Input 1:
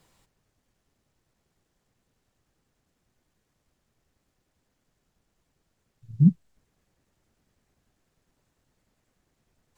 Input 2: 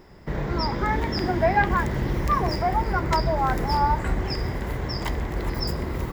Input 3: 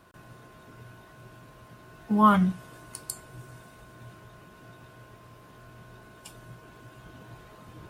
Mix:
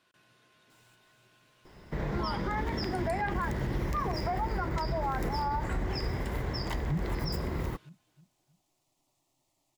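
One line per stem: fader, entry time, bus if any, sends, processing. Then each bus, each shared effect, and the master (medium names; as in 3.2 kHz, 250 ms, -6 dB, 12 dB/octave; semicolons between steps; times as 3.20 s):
+2.0 dB, 0.70 s, no send, echo send -8.5 dB, bass shelf 260 Hz -11.5 dB; static phaser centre 310 Hz, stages 8
-4.5 dB, 1.65 s, no send, no echo send, vibrato 0.93 Hz 25 cents
-15.5 dB, 0.00 s, no send, echo send -14 dB, frequency weighting D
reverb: none
echo: feedback delay 316 ms, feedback 36%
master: peak limiter -23 dBFS, peak gain reduction 10 dB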